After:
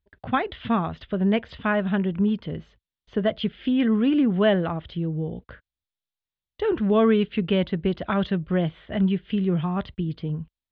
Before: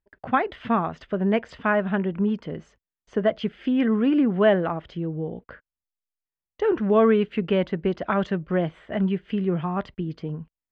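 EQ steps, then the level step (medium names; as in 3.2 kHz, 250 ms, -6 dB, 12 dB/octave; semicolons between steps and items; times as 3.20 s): resonant low-pass 3.7 kHz, resonance Q 3.6; peaking EQ 76 Hz +12.5 dB 2.4 oct; -3.5 dB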